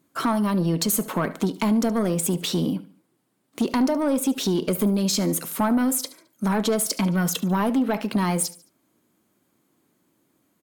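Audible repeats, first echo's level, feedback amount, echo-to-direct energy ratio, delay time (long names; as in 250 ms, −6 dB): 3, −18.0 dB, 39%, −17.5 dB, 72 ms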